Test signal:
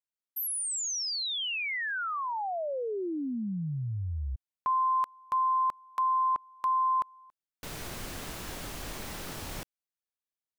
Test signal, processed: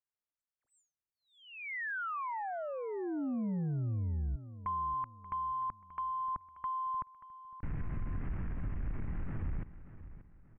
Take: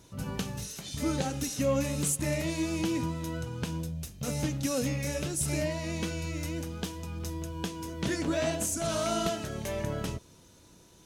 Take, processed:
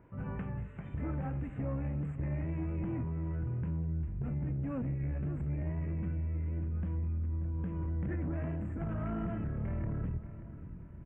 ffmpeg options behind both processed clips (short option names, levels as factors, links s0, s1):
-filter_complex "[0:a]asubboost=boost=8.5:cutoff=180,alimiter=limit=0.126:level=0:latency=1:release=14,acompressor=threshold=0.0251:ratio=6:attack=74:release=77:knee=6:detection=peak,asoftclip=type=tanh:threshold=0.0398,asplit=2[s0][s1];[s1]adelay=583,lowpass=f=4400:p=1,volume=0.2,asplit=2[s2][s3];[s3]adelay=583,lowpass=f=4400:p=1,volume=0.39,asplit=2[s4][s5];[s5]adelay=583,lowpass=f=4400:p=1,volume=0.39,asplit=2[s6][s7];[s7]adelay=583,lowpass=f=4400:p=1,volume=0.39[s8];[s2][s4][s6][s8]amix=inputs=4:normalize=0[s9];[s0][s9]amix=inputs=2:normalize=0,aresample=16000,aresample=44100,asuperstop=centerf=5200:order=8:qfactor=0.59,volume=0.794"